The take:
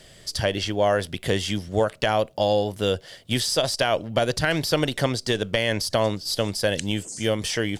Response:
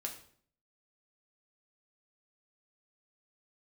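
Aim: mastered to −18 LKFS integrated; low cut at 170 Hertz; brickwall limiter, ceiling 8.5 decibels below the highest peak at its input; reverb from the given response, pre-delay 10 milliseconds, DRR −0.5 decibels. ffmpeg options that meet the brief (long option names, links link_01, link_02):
-filter_complex "[0:a]highpass=170,alimiter=limit=-14dB:level=0:latency=1,asplit=2[link_01][link_02];[1:a]atrim=start_sample=2205,adelay=10[link_03];[link_02][link_03]afir=irnorm=-1:irlink=0,volume=1.5dB[link_04];[link_01][link_04]amix=inputs=2:normalize=0,volume=5dB"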